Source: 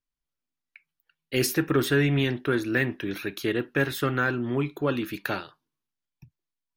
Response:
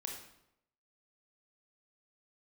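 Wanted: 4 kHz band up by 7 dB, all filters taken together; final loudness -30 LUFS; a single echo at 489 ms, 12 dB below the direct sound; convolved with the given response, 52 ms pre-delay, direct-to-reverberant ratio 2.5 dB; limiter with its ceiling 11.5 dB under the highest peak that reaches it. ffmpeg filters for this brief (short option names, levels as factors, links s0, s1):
-filter_complex "[0:a]equalizer=f=4000:t=o:g=9,alimiter=limit=0.1:level=0:latency=1,aecho=1:1:489:0.251,asplit=2[s0][s1];[1:a]atrim=start_sample=2205,adelay=52[s2];[s1][s2]afir=irnorm=-1:irlink=0,volume=0.841[s3];[s0][s3]amix=inputs=2:normalize=0,volume=0.841"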